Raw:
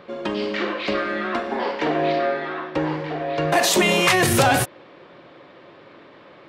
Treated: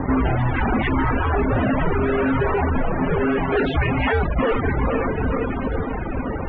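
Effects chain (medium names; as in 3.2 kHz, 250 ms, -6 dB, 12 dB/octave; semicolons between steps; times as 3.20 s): tilt shelf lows +7.5 dB, about 1.3 kHz; on a send: echo that smears into a reverb 495 ms, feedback 43%, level -13.5 dB; 3.19–4.19 s: on the sum: dynamic bell 250 Hz, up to -4 dB, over -23 dBFS, Q 1.3; in parallel at +1 dB: peak limiter -10 dBFS, peak gain reduction 7.5 dB; on the sum: fuzz box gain 33 dB, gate -38 dBFS; reverb removal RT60 1 s; loudest bins only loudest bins 64; mistuned SSB -290 Hz 210–3300 Hz; trim -2 dB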